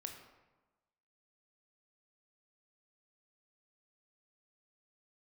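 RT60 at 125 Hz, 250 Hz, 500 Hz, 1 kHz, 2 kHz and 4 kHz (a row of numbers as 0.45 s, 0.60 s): 1.2 s, 1.2 s, 1.2 s, 1.2 s, 0.95 s, 0.70 s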